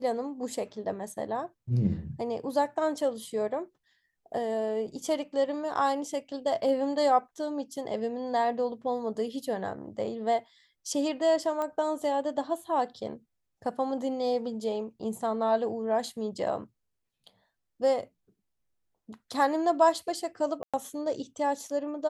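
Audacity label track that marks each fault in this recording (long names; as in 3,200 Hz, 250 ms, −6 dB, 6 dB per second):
11.620000	11.620000	click −20 dBFS
20.630000	20.740000	drop-out 106 ms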